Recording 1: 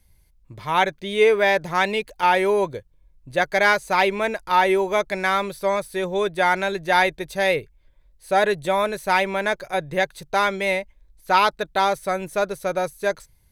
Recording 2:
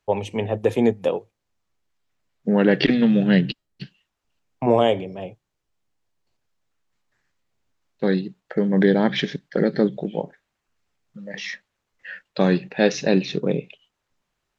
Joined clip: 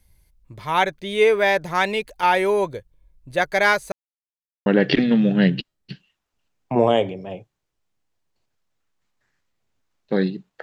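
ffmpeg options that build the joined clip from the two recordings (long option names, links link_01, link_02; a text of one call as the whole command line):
ffmpeg -i cue0.wav -i cue1.wav -filter_complex "[0:a]apad=whole_dur=10.62,atrim=end=10.62,asplit=2[link_01][link_02];[link_01]atrim=end=3.92,asetpts=PTS-STARTPTS,afade=type=out:start_time=3.916:duration=0.004:curve=hsin[link_03];[link_02]atrim=start=3.92:end=4.66,asetpts=PTS-STARTPTS,volume=0[link_04];[1:a]atrim=start=2.57:end=8.53,asetpts=PTS-STARTPTS,afade=type=in:duration=0.004:curve=hsin[link_05];[link_03][link_04][link_05]concat=n=3:v=0:a=1" out.wav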